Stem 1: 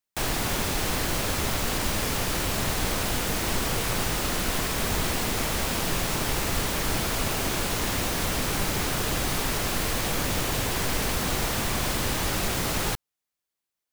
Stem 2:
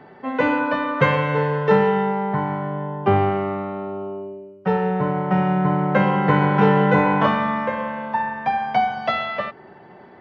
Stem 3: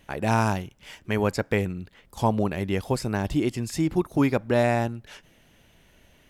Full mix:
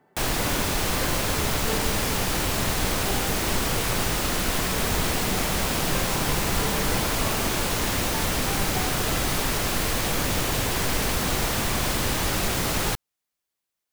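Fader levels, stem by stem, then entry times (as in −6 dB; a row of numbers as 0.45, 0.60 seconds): +2.0 dB, −17.0 dB, muted; 0.00 s, 0.00 s, muted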